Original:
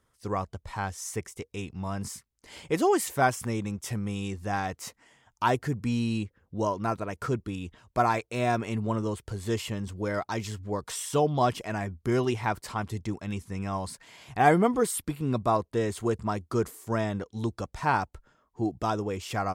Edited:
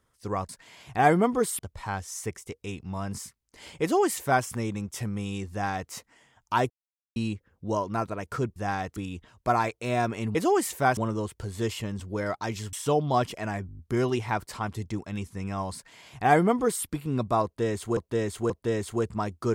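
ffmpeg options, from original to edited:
-filter_complex "[0:a]asplit=18[a][b][c][d][e][f][g][h][i][j][k][l][m][n][o][p][q][r];[a]atrim=end=0.492[s];[b]atrim=start=13.898:end=15.002[t];[c]atrim=start=0.488:end=5.6,asetpts=PTS-STARTPTS,afade=t=out:st=5.108:d=0.004:c=hsin[u];[d]atrim=start=5.6:end=6.06,asetpts=PTS-STARTPTS,volume=0[v];[e]atrim=start=6.06:end=7.462,asetpts=PTS-STARTPTS,afade=t=in:d=0.004:c=hsin[w];[f]atrim=start=4.408:end=4.812[x];[g]atrim=start=7.458:end=8.852[y];[h]atrim=start=2.718:end=3.342[z];[i]atrim=start=8.848:end=10.612[aa];[j]atrim=start=10.998:end=11.962[ab];[k]atrim=start=11.938:end=11.962[ac];[l]atrim=start=11.938:end=11.962[ad];[m]atrim=start=11.938:end=11.962[ae];[n]atrim=start=11.938:end=11.962[af];[o]atrim=start=11.938:end=11.962[ag];[p]atrim=start=11.938:end=16.122[ah];[q]atrim=start=15.588:end=16.122[ai];[r]atrim=start=15.588[aj];[s][t]acrossfade=d=0.004:c1=hsin:c2=hsin[ak];[u][v][w]concat=n=3:v=0:a=1[al];[ak][al]acrossfade=d=0.004:c1=hsin:c2=hsin[am];[am][x]acrossfade=d=0.004:c1=hsin:c2=hsin[an];[an][y]acrossfade=d=0.004:c1=hsin:c2=hsin[ao];[ao][z]acrossfade=d=0.004:c1=hsin:c2=hsin[ap];[ap][aa]acrossfade=d=0.004:c1=hsin:c2=hsin[aq];[aq][ab]acrossfade=d=0.004:c1=hsin:c2=hsin[ar];[ar][ac]acrossfade=d=0.004:c1=hsin:c2=hsin[as];[as][ad]acrossfade=d=0.004:c1=hsin:c2=hsin[at];[at][ae]acrossfade=d=0.004:c1=hsin:c2=hsin[au];[au][af]acrossfade=d=0.004:c1=hsin:c2=hsin[av];[av][ag]acrossfade=d=0.004:c1=hsin:c2=hsin[aw];[aw][ah]acrossfade=d=0.004:c1=hsin:c2=hsin[ax];[ax][ai]acrossfade=d=0.004:c1=hsin:c2=hsin[ay];[ay][aj]acrossfade=d=0.004:c1=hsin:c2=hsin"

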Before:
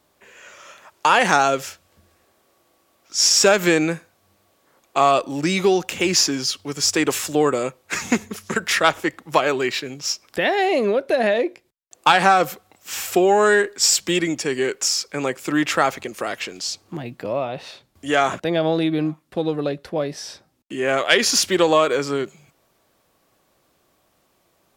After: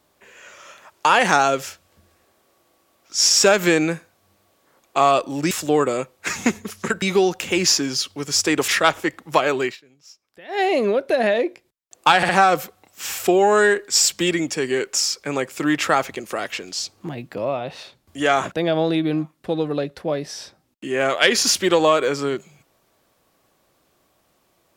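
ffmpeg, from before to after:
-filter_complex "[0:a]asplit=8[a][b][c][d][e][f][g][h];[a]atrim=end=5.512[i];[b]atrim=start=7.168:end=8.682[j];[c]atrim=start=5.508:end=7.172[k];[d]atrim=start=8.678:end=9.77,asetpts=PTS-STARTPTS,afade=t=out:st=0.962:d=0.13:silence=0.0749894[l];[e]atrim=start=9.77:end=10.48,asetpts=PTS-STARTPTS,volume=-22.5dB[m];[f]atrim=start=10.48:end=12.232,asetpts=PTS-STARTPTS,afade=t=in:d=0.13:silence=0.0749894[n];[g]atrim=start=12.168:end=12.232[o];[h]atrim=start=12.168[p];[i][j]acrossfade=d=0.004:c1=hsin:c2=hsin[q];[q][k]acrossfade=d=0.004:c1=hsin:c2=hsin[r];[l][m][n]concat=n=3:v=0:a=1[s];[r][s]acrossfade=d=0.004:c1=hsin:c2=hsin[t];[t][o]acrossfade=d=0.004:c1=hsin:c2=hsin[u];[u][p]acrossfade=d=0.004:c1=hsin:c2=hsin"

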